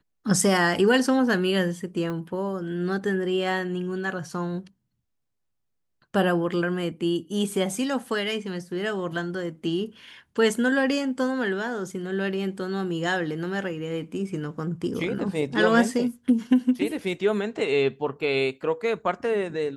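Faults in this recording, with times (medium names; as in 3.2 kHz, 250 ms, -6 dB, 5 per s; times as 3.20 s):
2.10 s: pop -21 dBFS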